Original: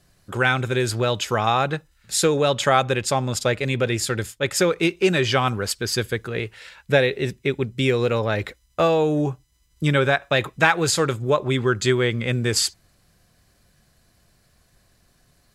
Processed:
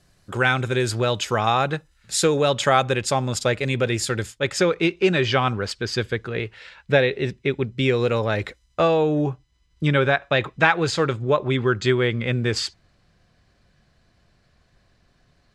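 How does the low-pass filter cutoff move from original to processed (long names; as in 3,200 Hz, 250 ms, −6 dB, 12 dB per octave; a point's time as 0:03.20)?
0:04.12 10,000 Hz
0:04.79 4,700 Hz
0:07.80 4,700 Hz
0:08.22 11,000 Hz
0:09.07 4,300 Hz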